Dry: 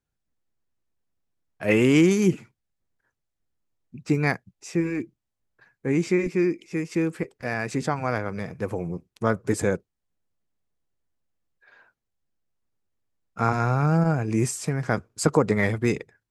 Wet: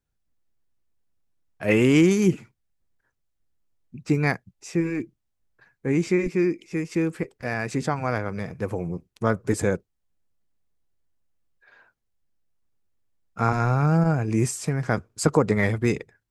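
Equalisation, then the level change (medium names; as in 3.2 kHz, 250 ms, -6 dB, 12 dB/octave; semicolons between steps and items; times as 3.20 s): bass shelf 67 Hz +7 dB; 0.0 dB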